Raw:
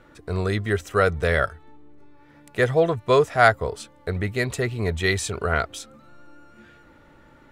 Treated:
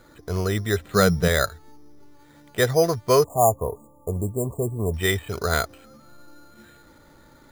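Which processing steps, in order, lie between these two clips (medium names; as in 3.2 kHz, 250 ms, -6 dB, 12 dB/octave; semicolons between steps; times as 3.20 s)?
0.84–1.28 s: peaking EQ 180 Hz +14 dB 0.58 oct; careless resampling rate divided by 8×, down filtered, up hold; 3.24–4.94 s: brick-wall FIR band-stop 1.2–6.7 kHz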